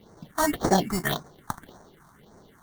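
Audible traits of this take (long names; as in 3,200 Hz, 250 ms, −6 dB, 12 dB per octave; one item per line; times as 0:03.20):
aliases and images of a low sample rate 2,500 Hz, jitter 0%
phaser sweep stages 4, 1.8 Hz, lowest notch 430–3,100 Hz
Nellymoser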